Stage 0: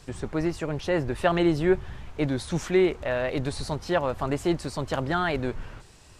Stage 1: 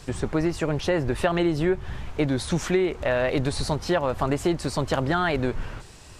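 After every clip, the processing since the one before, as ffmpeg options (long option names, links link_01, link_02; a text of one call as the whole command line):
ffmpeg -i in.wav -af "acompressor=threshold=-25dB:ratio=6,volume=6dB" out.wav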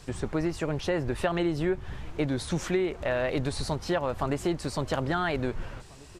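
ffmpeg -i in.wav -filter_complex "[0:a]asplit=2[link_01][link_02];[link_02]adelay=1691,volume=-23dB,highshelf=frequency=4000:gain=-38[link_03];[link_01][link_03]amix=inputs=2:normalize=0,volume=-4.5dB" out.wav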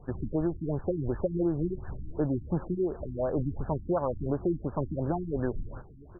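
ffmpeg -i in.wav -af "afftfilt=real='re*lt(b*sr/1024,330*pow(1800/330,0.5+0.5*sin(2*PI*2.8*pts/sr)))':imag='im*lt(b*sr/1024,330*pow(1800/330,0.5+0.5*sin(2*PI*2.8*pts/sr)))':win_size=1024:overlap=0.75" out.wav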